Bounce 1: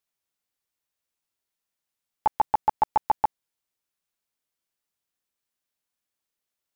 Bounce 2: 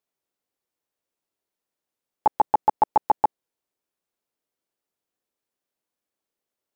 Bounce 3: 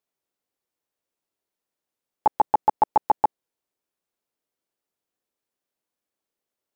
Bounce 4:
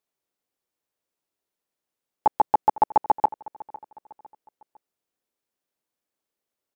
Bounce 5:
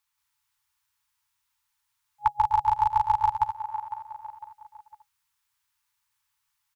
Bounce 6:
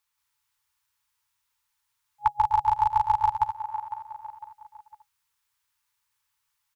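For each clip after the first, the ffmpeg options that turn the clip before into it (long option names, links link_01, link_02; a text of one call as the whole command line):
ffmpeg -i in.wav -af "equalizer=frequency=410:width_type=o:width=2.5:gain=11,volume=-3.5dB" out.wav
ffmpeg -i in.wav -af anull out.wav
ffmpeg -i in.wav -af "aecho=1:1:504|1008|1512:0.106|0.0413|0.0161" out.wav
ffmpeg -i in.wav -filter_complex "[0:a]aecho=1:1:177.8|250.7:0.891|0.316,acrossover=split=450|3000[link_01][link_02][link_03];[link_02]acompressor=threshold=-28dB:ratio=6[link_04];[link_01][link_04][link_03]amix=inputs=3:normalize=0,afftfilt=real='re*(1-between(b*sr/4096,130,830))':imag='im*(1-between(b*sr/4096,130,830))':win_size=4096:overlap=0.75,volume=7dB" out.wav
ffmpeg -i in.wav -af "equalizer=frequency=490:width=7.9:gain=14.5" out.wav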